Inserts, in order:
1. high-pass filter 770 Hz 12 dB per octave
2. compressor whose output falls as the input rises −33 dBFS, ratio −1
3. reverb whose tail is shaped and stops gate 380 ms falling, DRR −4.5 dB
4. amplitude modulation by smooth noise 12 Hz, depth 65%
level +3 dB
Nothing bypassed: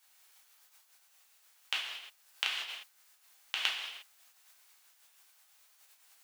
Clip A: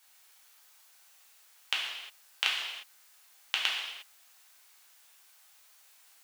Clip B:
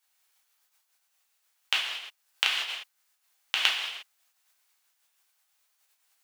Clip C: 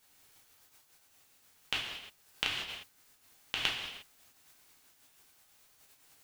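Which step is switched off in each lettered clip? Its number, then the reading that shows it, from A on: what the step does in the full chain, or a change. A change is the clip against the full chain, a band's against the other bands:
4, change in momentary loudness spread +1 LU
2, change in integrated loudness +7.5 LU
1, 500 Hz band +7.0 dB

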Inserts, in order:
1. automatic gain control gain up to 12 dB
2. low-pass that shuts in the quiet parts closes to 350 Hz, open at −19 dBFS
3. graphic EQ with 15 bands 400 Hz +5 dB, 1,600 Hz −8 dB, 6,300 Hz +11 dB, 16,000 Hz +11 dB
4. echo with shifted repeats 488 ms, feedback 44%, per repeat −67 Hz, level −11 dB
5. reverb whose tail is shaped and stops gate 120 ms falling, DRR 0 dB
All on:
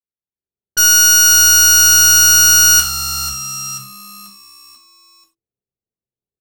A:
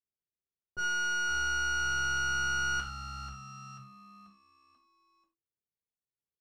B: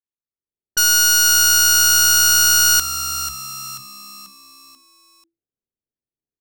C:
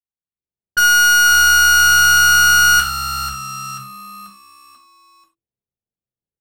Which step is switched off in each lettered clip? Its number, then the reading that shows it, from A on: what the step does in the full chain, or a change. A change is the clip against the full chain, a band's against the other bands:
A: 1, 8 kHz band −20.0 dB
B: 5, echo-to-direct ratio 1.0 dB to −10.0 dB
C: 3, 8 kHz band −13.0 dB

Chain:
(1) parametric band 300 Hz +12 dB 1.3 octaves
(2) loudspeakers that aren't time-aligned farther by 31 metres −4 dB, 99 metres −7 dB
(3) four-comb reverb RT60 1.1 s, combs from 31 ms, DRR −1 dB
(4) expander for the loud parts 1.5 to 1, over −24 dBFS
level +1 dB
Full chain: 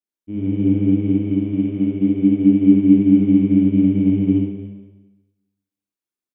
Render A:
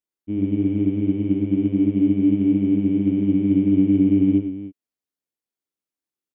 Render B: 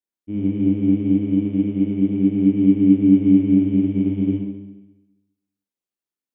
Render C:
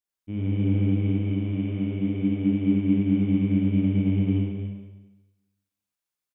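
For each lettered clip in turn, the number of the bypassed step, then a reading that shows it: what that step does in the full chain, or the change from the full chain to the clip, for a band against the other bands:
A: 3, change in momentary loudness spread −4 LU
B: 2, change in momentary loudness spread −2 LU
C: 1, change in momentary loudness spread −4 LU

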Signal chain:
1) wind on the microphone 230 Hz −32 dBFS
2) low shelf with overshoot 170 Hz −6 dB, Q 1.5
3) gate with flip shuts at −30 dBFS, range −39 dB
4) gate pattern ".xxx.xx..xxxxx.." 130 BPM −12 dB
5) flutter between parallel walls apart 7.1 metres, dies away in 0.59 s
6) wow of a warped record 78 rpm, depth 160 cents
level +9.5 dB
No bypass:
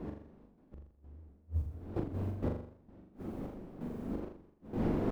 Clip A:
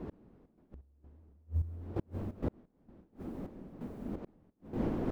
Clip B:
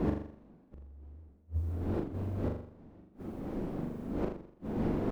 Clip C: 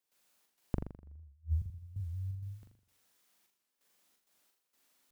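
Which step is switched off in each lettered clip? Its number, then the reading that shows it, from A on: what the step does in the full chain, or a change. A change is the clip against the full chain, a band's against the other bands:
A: 5, change in crest factor +2.0 dB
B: 4, change in integrated loudness +2.5 LU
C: 1, change in crest factor +8.5 dB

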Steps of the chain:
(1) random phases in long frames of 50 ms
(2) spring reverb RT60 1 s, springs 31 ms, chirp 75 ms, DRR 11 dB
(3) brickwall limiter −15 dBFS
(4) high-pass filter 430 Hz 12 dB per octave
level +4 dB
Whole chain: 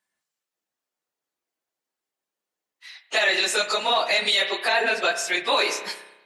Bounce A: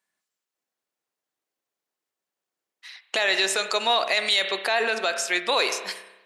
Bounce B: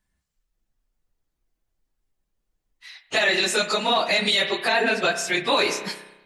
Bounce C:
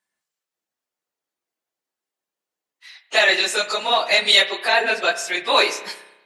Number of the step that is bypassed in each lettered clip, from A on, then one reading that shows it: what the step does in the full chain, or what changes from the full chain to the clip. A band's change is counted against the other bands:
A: 1, change in integrated loudness −1.0 LU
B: 4, 250 Hz band +8.0 dB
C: 3, average gain reduction 1.5 dB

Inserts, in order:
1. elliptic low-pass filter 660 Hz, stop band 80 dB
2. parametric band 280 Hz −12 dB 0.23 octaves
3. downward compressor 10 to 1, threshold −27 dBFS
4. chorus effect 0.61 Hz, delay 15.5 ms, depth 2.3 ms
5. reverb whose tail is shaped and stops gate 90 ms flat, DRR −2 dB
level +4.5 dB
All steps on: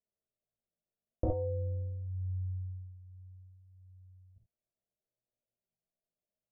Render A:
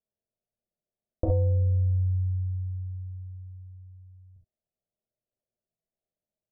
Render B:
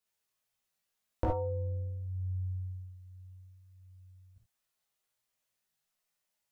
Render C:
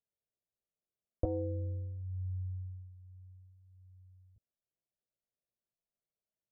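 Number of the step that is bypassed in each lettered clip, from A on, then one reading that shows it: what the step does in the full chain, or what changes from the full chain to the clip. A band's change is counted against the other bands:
4, change in crest factor −5.5 dB
1, 1 kHz band +8.0 dB
5, 250 Hz band +4.0 dB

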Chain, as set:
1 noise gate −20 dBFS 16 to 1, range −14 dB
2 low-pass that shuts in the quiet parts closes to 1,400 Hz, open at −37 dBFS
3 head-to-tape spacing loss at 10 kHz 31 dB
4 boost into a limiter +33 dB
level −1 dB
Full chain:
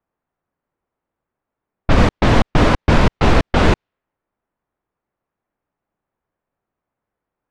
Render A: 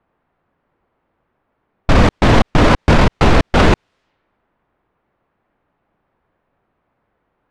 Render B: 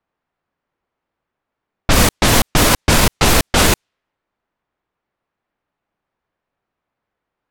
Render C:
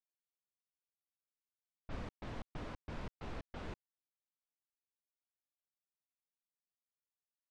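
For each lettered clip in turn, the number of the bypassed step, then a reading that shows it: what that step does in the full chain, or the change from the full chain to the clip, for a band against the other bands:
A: 1, change in crest factor −2.0 dB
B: 3, 8 kHz band +19.5 dB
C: 4, change in crest factor +4.0 dB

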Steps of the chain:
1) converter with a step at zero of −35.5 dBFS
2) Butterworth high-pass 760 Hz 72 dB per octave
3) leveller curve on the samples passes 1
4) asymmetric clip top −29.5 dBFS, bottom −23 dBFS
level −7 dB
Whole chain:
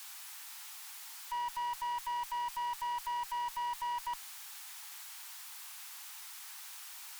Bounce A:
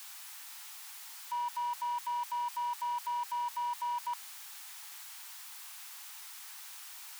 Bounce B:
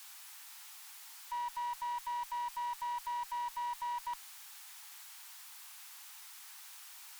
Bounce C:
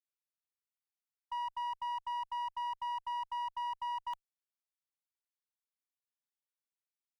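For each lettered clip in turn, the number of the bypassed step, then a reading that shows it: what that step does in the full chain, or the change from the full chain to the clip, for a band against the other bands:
4, distortion level −15 dB
3, change in crest factor +2.0 dB
1, distortion level −13 dB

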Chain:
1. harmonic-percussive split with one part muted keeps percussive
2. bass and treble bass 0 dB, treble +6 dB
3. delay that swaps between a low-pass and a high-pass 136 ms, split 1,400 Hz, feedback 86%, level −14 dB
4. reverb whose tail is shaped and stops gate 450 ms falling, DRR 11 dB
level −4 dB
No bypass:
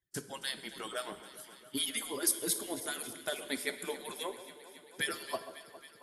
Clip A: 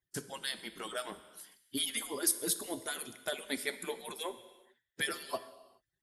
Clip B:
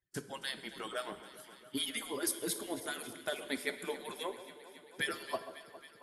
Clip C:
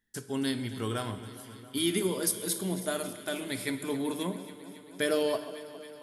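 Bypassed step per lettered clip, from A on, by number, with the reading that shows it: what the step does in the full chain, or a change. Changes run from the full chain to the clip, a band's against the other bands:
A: 3, echo-to-direct ratio −8.0 dB to −11.0 dB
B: 2, change in crest factor −3.5 dB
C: 1, 125 Hz band +14.0 dB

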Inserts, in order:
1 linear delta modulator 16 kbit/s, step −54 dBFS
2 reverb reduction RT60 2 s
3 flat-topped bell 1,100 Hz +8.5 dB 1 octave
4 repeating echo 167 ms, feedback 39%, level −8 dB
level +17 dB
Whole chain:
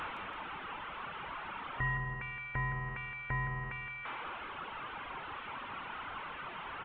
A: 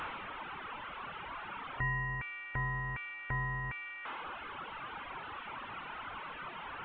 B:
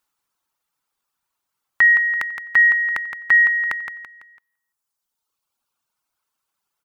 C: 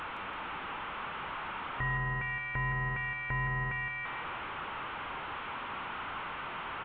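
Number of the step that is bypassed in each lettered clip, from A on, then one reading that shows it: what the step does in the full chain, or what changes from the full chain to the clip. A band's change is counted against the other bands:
4, change in momentary loudness spread +1 LU
1, change in momentary loudness spread +5 LU
2, change in integrated loudness +4.0 LU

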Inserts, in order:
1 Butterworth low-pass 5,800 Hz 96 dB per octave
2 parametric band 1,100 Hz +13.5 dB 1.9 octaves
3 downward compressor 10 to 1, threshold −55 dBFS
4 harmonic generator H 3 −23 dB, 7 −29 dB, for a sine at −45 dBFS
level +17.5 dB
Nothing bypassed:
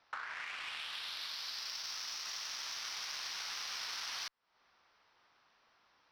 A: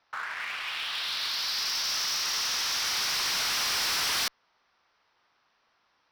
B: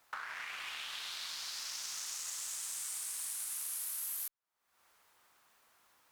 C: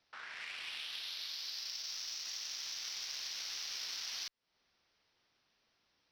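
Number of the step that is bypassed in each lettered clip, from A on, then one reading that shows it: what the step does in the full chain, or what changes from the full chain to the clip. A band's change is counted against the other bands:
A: 3, average gain reduction 13.0 dB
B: 1, 8 kHz band +10.5 dB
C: 2, 1 kHz band −7.5 dB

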